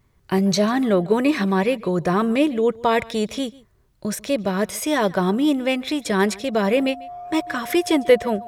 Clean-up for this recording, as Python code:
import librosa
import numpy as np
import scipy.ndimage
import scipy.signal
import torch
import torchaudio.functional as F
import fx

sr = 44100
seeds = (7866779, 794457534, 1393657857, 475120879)

y = fx.notch(x, sr, hz=710.0, q=30.0)
y = fx.fix_echo_inverse(y, sr, delay_ms=144, level_db=-22.5)